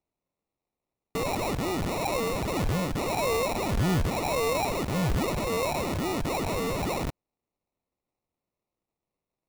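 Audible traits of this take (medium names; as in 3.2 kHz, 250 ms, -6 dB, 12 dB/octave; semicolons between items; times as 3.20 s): phasing stages 8, 0.71 Hz, lowest notch 800–1800 Hz; aliases and images of a low sample rate 1.6 kHz, jitter 0%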